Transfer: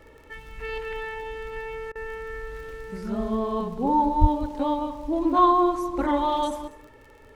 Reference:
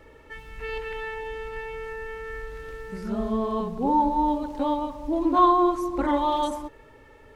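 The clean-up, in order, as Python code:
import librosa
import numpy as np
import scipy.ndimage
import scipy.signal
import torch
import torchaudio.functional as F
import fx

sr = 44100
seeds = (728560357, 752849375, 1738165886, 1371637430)

y = fx.fix_declick_ar(x, sr, threshold=6.5)
y = fx.fix_deplosive(y, sr, at_s=(4.2,))
y = fx.fix_interpolate(y, sr, at_s=(1.92,), length_ms=33.0)
y = fx.fix_echo_inverse(y, sr, delay_ms=196, level_db=-17.0)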